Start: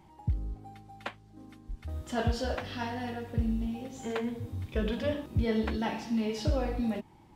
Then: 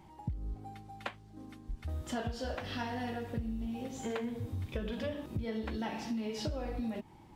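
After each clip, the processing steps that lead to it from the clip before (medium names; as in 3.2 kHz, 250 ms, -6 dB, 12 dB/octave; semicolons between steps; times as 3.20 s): compression 10:1, threshold -34 dBFS, peak gain reduction 12 dB; trim +1 dB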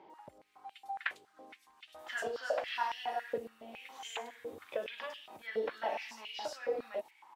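bands offset in time lows, highs 100 ms, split 4.8 kHz; step-sequenced high-pass 7.2 Hz 460–2900 Hz; trim -1 dB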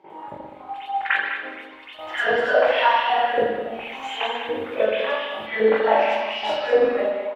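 delay 203 ms -9.5 dB; reverberation RT60 1.0 s, pre-delay 41 ms, DRR -17.5 dB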